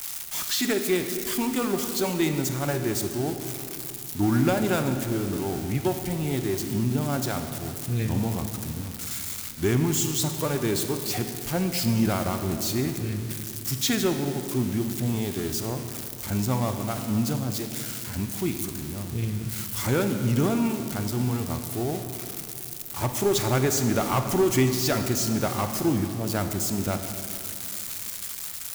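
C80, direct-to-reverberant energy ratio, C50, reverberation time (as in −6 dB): 8.0 dB, 6.5 dB, 7.0 dB, 2.7 s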